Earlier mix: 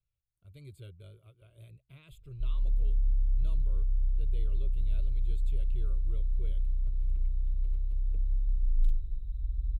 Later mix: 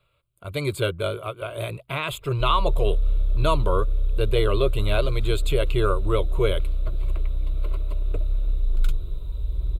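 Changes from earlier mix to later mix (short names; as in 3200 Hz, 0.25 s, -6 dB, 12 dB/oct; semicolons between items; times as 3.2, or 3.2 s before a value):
speech +6.5 dB; master: remove passive tone stack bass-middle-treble 10-0-1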